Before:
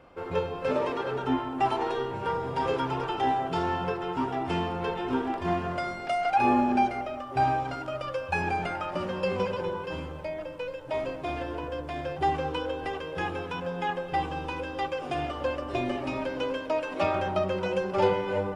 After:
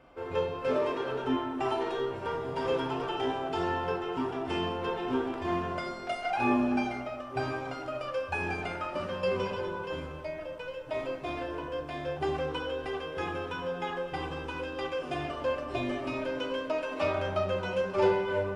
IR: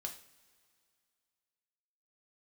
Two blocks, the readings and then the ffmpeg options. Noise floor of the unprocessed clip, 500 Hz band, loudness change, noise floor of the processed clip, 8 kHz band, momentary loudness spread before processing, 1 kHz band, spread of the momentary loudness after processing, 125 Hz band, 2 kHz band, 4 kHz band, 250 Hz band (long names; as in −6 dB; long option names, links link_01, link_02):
−38 dBFS, −1.0 dB, −3.0 dB, −41 dBFS, can't be measured, 8 LU, −6.0 dB, 7 LU, −4.0 dB, −1.5 dB, −1.0 dB, −2.0 dB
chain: -filter_complex "[1:a]atrim=start_sample=2205[link_01];[0:a][link_01]afir=irnorm=-1:irlink=0"